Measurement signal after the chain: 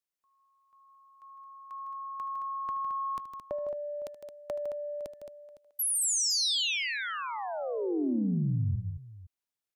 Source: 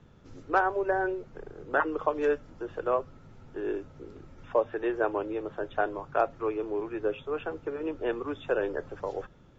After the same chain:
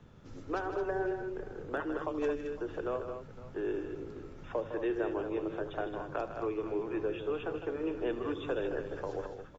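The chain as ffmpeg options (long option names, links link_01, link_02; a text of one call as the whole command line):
ffmpeg -i in.wav -filter_complex "[0:a]acrossover=split=360|3000[link_01][link_02][link_03];[link_02]acompressor=threshold=-37dB:ratio=6[link_04];[link_01][link_04][link_03]amix=inputs=3:normalize=0,asoftclip=type=tanh:threshold=-18dB,asplit=2[link_05][link_06];[link_06]aecho=0:1:76|157|219|509:0.178|0.335|0.376|0.126[link_07];[link_05][link_07]amix=inputs=2:normalize=0" out.wav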